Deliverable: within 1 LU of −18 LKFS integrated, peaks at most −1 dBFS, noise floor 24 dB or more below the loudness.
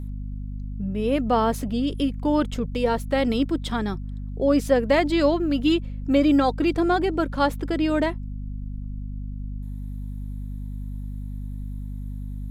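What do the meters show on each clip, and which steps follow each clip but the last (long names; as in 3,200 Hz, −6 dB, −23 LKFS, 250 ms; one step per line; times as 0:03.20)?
mains hum 50 Hz; hum harmonics up to 250 Hz; level of the hum −29 dBFS; integrated loudness −23.0 LKFS; sample peak −7.5 dBFS; target loudness −18.0 LKFS
→ hum removal 50 Hz, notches 5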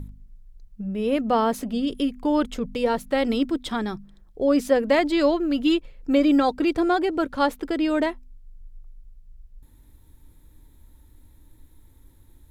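mains hum none found; integrated loudness −23.0 LKFS; sample peak −7.5 dBFS; target loudness −18.0 LKFS
→ level +5 dB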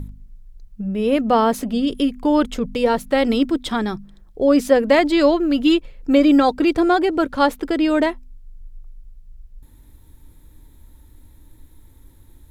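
integrated loudness −18.0 LKFS; sample peak −2.5 dBFS; background noise floor −49 dBFS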